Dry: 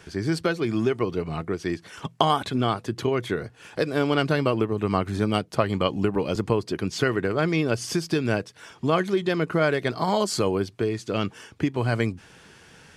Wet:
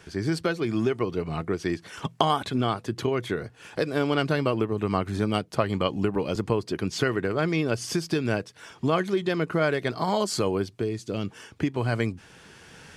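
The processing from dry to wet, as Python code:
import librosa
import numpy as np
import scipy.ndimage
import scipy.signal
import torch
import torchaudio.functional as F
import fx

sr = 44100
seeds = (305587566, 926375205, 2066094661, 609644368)

y = fx.recorder_agc(x, sr, target_db=-13.5, rise_db_per_s=5.8, max_gain_db=30)
y = fx.peak_eq(y, sr, hz=1400.0, db=fx.line((10.67, -3.0), (11.27, -10.5)), octaves=2.5, at=(10.67, 11.27), fade=0.02)
y = F.gain(torch.from_numpy(y), -2.0).numpy()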